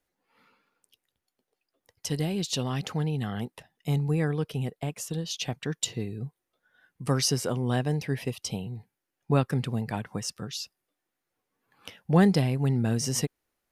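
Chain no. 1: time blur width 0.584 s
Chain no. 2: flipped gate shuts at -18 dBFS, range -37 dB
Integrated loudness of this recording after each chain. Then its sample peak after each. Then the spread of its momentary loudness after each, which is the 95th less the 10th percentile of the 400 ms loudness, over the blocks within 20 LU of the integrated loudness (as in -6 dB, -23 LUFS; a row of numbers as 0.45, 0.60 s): -33.5, -35.0 LUFS; -17.5, -16.0 dBFS; 15, 12 LU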